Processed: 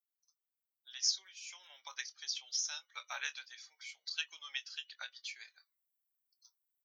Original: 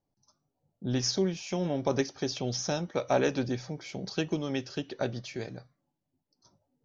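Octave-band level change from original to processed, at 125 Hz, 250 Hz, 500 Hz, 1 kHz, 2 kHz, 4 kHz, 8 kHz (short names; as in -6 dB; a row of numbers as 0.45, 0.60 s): under -40 dB, under -40 dB, -36.0 dB, -15.5 dB, -3.5 dB, -1.0 dB, n/a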